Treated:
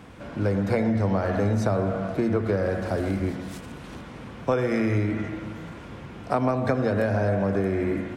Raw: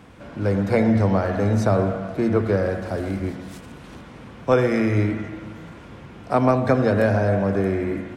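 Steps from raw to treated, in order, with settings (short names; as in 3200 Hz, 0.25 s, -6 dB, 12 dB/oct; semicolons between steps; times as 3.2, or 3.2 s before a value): compressor 5:1, threshold -21 dBFS, peak gain reduction 8.5 dB; gain +1 dB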